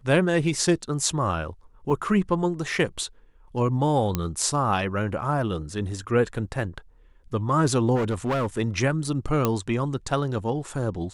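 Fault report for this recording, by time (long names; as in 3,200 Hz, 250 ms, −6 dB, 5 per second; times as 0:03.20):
0:01.90: drop-out 3.3 ms
0:04.15: click −10 dBFS
0:07.95–0:08.46: clipping −21 dBFS
0:09.45: click −8 dBFS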